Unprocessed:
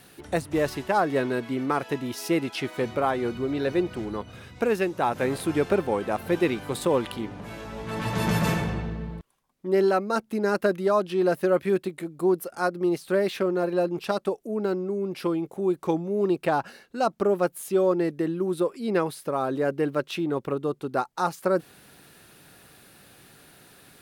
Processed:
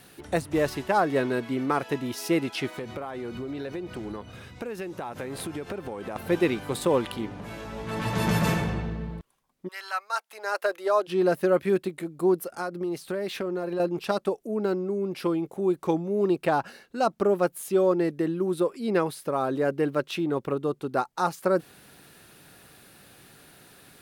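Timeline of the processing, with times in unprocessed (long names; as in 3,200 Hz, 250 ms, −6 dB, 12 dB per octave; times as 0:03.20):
0:02.75–0:06.16: downward compressor 12 to 1, threshold −30 dBFS
0:09.67–0:11.07: high-pass filter 1,300 Hz → 360 Hz 24 dB per octave
0:12.48–0:13.80: downward compressor, threshold −26 dBFS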